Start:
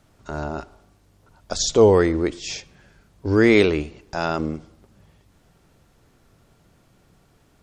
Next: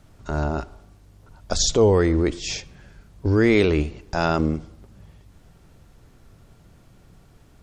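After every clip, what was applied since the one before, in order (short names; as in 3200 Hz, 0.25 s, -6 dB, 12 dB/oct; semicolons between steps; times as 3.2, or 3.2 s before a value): low shelf 130 Hz +9 dB; in parallel at -2.5 dB: negative-ratio compressor -21 dBFS, ratio -1; on the sum: gain -5 dB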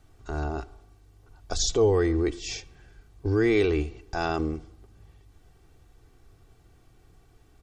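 comb 2.6 ms, depth 58%; gain -7 dB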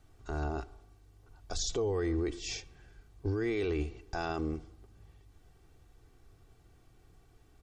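limiter -20.5 dBFS, peak gain reduction 8 dB; gain -4 dB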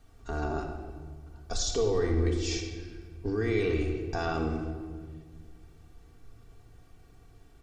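shoebox room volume 2100 m³, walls mixed, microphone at 1.7 m; gain +2 dB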